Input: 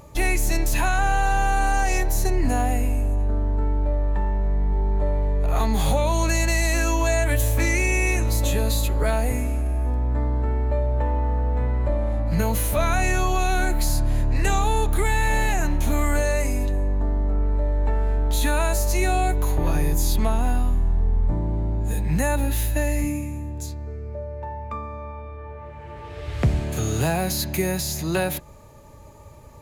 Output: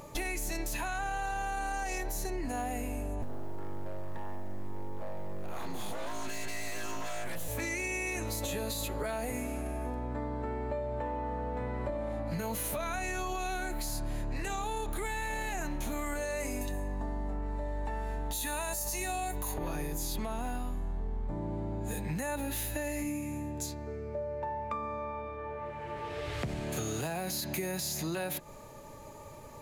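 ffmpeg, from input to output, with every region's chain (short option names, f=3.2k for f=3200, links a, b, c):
-filter_complex "[0:a]asettb=1/sr,asplit=3[a][b][c];[a]atrim=end=3.224[d];[b]atrim=start=3.22:end=7.48,asetpts=PTS-STARTPTS,afade=t=in:d=0.004:c=qsin,afade=t=out:st=4.256:d=0.004:c=qsin,aeval=exprs='abs(val(0))':c=same,acrusher=bits=6:dc=4:mix=0:aa=0.000001[e];[c]atrim=start=7.476[f];[d][e]acrossfade=d=0.004:c1=hsin:c2=qsin[g];[g][f]acrossfade=d=0.004:c1=qsin:c2=hsin,asettb=1/sr,asplit=3[h][i][j];[h]atrim=end=16.614[k];[i]atrim=start=16.61:end=19.54,asetpts=PTS-STARTPTS,afade=t=in:d=0.004:c=qsin,afade=t=out:st=2.926:d=0.004:c=qsin,aemphasis=mode=production:type=cd,aecho=1:1:1.1:0.37,atrim=end_sample=129213[l];[j]atrim=start=19.536[m];[k][l]acrossfade=d=0.004:c1=hsin:c2=qsin[n];[n][m]acrossfade=d=0.004:c1=qsin:c2=hsin,equalizer=f=64:t=o:w=1.6:g=-14,alimiter=limit=-19dB:level=0:latency=1,acompressor=threshold=-33dB:ratio=6,volume=1dB"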